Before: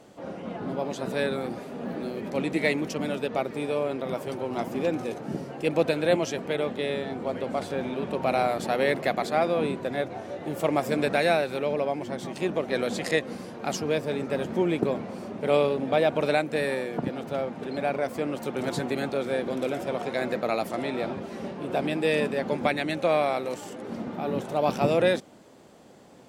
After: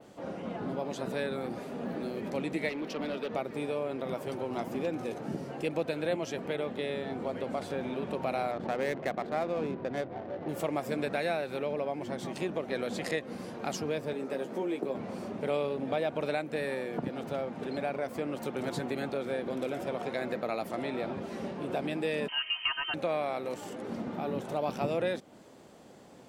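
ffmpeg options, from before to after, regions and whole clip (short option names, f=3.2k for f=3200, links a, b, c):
-filter_complex "[0:a]asettb=1/sr,asplit=3[a][b][c];[a]atrim=end=2.694[d];[b]atrim=start=2.69:end=3.3,asetpts=PTS-STARTPTS,afade=t=in:d=0.004:c=qsin,afade=t=out:st=0.606:d=0.004:c=qsin,highpass=220,asoftclip=type=hard:threshold=-26dB,highshelf=f=5.7k:t=q:w=1.5:g=-7.5[e];[c]atrim=start=3.296[f];[d][e]acrossfade=d=0.004:c1=hsin:c2=qsin[g];[g][f]acrossfade=d=0.004:c1=qsin:c2=hsin,asettb=1/sr,asplit=3[h][i][j];[h]atrim=end=8.514[k];[i]atrim=start=8.51:end=10.49,asetpts=PTS-STARTPTS,afade=t=in:d=0.004:c=qsin,afade=t=out:st=1.976:d=0.004:c=qsin,highshelf=f=5.5k:g=-7.5,adynamicsmooth=sensitivity=5.5:basefreq=720[l];[j]atrim=start=10.486[m];[k][l]acrossfade=d=0.004:c1=hsin:c2=qsin[n];[n][m]acrossfade=d=0.004:c1=qsin:c2=hsin,asettb=1/sr,asplit=3[o][p][q];[o]atrim=end=14.134[r];[p]atrim=start=14.13:end=14.95,asetpts=PTS-STARTPTS,afade=t=in:d=0.004:c=qsin,afade=t=out:st=0.816:d=0.004:c=qsin,highpass=290,equalizer=f=2.4k:w=0.33:g=-5,asplit=2[s][t];[t]adelay=15,volume=-6dB[u];[s][u]amix=inputs=2:normalize=0,atrim=end_sample=36162[v];[q]atrim=start=14.946[w];[r][v]acrossfade=d=0.004:c1=hsin:c2=qsin[x];[x][w]acrossfade=d=0.004:c1=qsin:c2=hsin,asettb=1/sr,asplit=3[y][z][aa];[y]atrim=end=22.284[ab];[z]atrim=start=22.28:end=22.94,asetpts=PTS-STARTPTS,afade=t=in:d=0.004:c=qsin,afade=t=out:st=0.656:d=0.004:c=qsin,highpass=f=380:w=0.5412,highpass=f=380:w=1.3066,aecho=1:1:3.3:1,atrim=end_sample=29106,lowpass=f=2.9k:t=q:w=0.5098,lowpass=f=2.9k:t=q:w=0.6013,lowpass=f=2.9k:t=q:w=0.9,lowpass=f=2.9k:t=q:w=2.563,afreqshift=-3400[ac];[aa]atrim=start=22.936[ad];[ab][ac]acrossfade=d=0.004:c1=hsin:c2=qsin[ae];[ae][ad]acrossfade=d=0.004:c1=qsin:c2=hsin,adynamicequalizer=threshold=0.00398:dfrequency=7100:dqfactor=0.7:tfrequency=7100:tqfactor=0.7:attack=5:release=100:ratio=0.375:range=2:mode=cutabove:tftype=bell,acompressor=threshold=-31dB:ratio=2,volume=-1.5dB"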